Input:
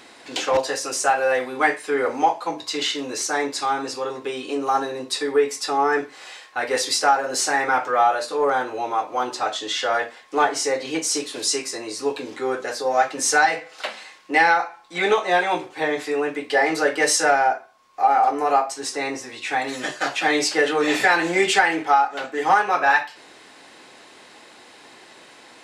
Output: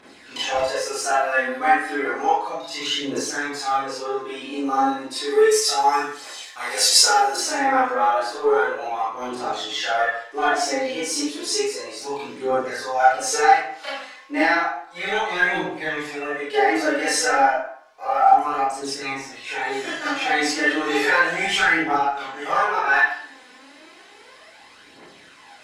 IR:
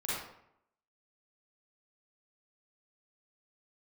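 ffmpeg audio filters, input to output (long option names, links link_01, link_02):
-filter_complex "[0:a]asettb=1/sr,asplit=3[link_01][link_02][link_03];[link_01]atrim=end=5.274[link_04];[link_02]atrim=start=5.27:end=7.36,asetpts=PTS-STARTPTS,afade=type=in:duration=0.004:curve=qsin,afade=type=out:start_time=2.086:duration=0.004:curve=qsin,bass=frequency=250:gain=-8,treble=frequency=4000:gain=14[link_05];[link_03]atrim=start=7.356[link_06];[link_04][link_05]acrossfade=duration=0.004:curve1=hsin:curve2=qsin[link_07];[link_07][link_06]acrossfade=duration=0.004:curve1=qsin:curve2=hsin,aphaser=in_gain=1:out_gain=1:delay=4.1:decay=0.71:speed=0.32:type=triangular[link_08];[1:a]atrim=start_sample=2205,asetrate=61740,aresample=44100[link_09];[link_08][link_09]afir=irnorm=-1:irlink=0,volume=-5dB"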